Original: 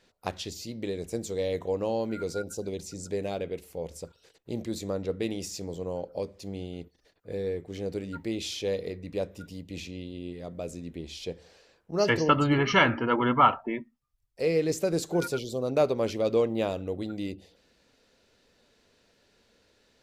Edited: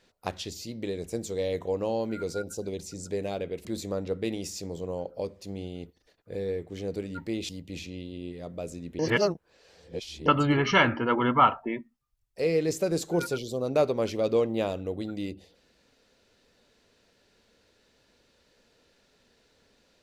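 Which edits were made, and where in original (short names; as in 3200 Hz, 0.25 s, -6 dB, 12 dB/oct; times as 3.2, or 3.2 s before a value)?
3.65–4.63 cut
8.47–9.5 cut
11–12.27 reverse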